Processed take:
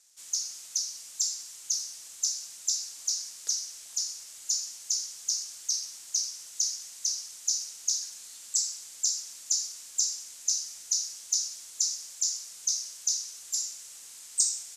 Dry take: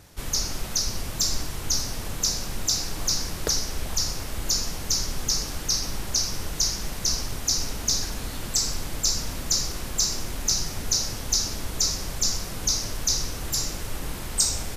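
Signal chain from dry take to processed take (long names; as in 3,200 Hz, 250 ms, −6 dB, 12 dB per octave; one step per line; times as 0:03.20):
resonant band-pass 7,200 Hz, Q 2.4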